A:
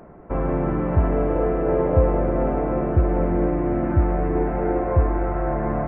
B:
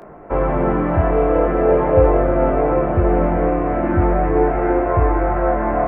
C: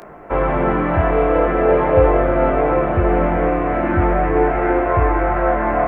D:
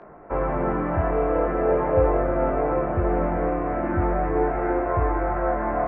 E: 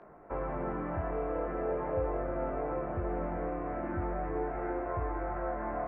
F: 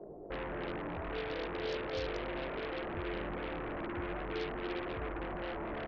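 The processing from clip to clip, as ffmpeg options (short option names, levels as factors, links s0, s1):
-filter_complex "[0:a]acrossover=split=140|370[s0][s1][s2];[s2]acontrast=86[s3];[s0][s1][s3]amix=inputs=3:normalize=0,flanger=delay=19.5:depth=5.1:speed=0.42,volume=1.58"
-af "tiltshelf=f=1500:g=-5.5,volume=1.68"
-af "lowpass=1700,volume=0.473"
-af "acompressor=threshold=0.0447:ratio=1.5,volume=0.376"
-filter_complex "[0:a]firequalizer=gain_entry='entry(250,0);entry(370,7);entry(1500,-30)':delay=0.05:min_phase=1,asplit=2[s0][s1];[s1]aeval=exprs='0.0501*sin(PI/2*4.47*val(0)/0.0501)':c=same,volume=0.531[s2];[s0][s2]amix=inputs=2:normalize=0,volume=0.376"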